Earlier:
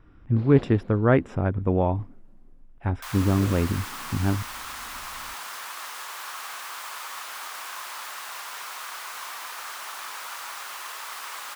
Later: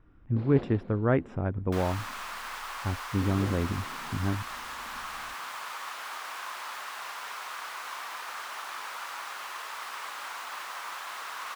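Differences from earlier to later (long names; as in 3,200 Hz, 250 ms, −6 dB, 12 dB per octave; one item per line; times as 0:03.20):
speech −5.5 dB
second sound: entry −1.30 s
master: add high-shelf EQ 5,100 Hz −10 dB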